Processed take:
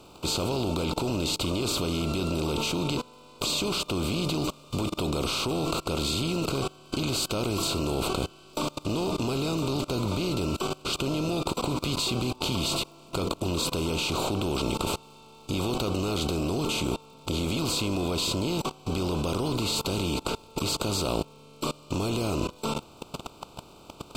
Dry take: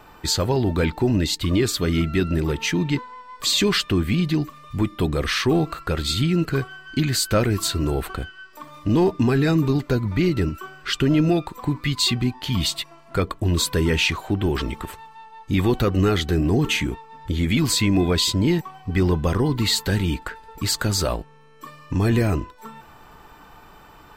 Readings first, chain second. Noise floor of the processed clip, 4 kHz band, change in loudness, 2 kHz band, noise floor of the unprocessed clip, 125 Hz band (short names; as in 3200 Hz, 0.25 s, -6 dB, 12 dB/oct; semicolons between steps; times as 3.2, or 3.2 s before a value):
-51 dBFS, -4.5 dB, -7.0 dB, -8.5 dB, -48 dBFS, -9.0 dB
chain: per-bin compression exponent 0.4; dynamic EQ 910 Hz, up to +3 dB, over -29 dBFS, Q 0.9; level quantiser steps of 23 dB; crackle 110/s -43 dBFS; Butterworth band-stop 1800 Hz, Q 1.6; gain -4.5 dB